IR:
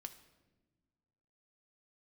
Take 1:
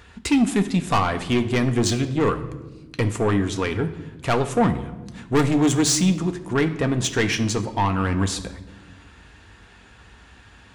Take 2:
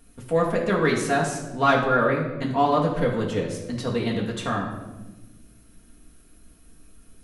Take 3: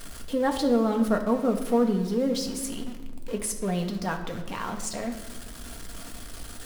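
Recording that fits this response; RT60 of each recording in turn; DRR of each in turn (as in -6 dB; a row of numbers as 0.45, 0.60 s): 1; not exponential, 1.2 s, 1.2 s; 7.0, -3.5, 3.0 dB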